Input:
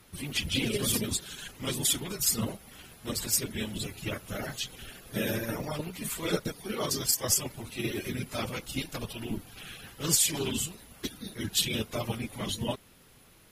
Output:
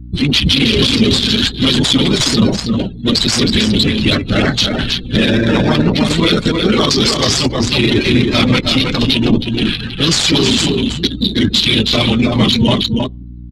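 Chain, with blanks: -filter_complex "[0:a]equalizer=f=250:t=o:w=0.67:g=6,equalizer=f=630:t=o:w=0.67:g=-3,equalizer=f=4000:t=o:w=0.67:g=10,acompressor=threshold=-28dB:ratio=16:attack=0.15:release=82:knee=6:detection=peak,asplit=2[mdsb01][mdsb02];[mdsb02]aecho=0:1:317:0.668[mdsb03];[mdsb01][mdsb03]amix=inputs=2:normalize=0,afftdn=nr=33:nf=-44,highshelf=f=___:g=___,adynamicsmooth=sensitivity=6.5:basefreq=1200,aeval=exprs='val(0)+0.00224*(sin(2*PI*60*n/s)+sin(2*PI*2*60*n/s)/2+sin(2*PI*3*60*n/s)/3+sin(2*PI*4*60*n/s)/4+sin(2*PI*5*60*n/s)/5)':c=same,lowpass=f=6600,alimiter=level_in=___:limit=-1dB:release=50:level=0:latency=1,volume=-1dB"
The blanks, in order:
3600, 9, 24.5dB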